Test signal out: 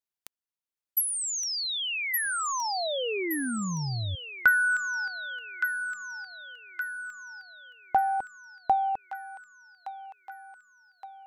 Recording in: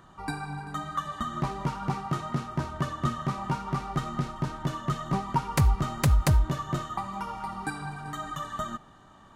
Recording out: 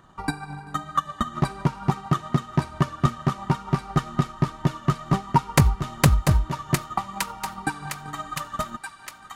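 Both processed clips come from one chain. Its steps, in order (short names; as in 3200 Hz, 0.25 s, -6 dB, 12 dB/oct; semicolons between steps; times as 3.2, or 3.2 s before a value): transient shaper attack +10 dB, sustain -3 dB; thin delay 1.168 s, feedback 53%, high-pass 1500 Hz, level -4 dB; gain -1 dB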